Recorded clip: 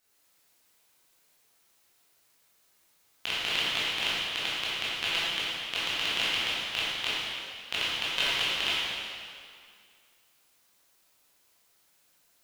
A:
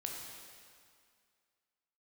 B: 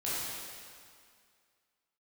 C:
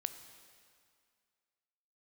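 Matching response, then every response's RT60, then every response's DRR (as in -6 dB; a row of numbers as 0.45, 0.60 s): B; 2.1, 2.1, 2.1 s; -0.5, -10.0, 9.5 dB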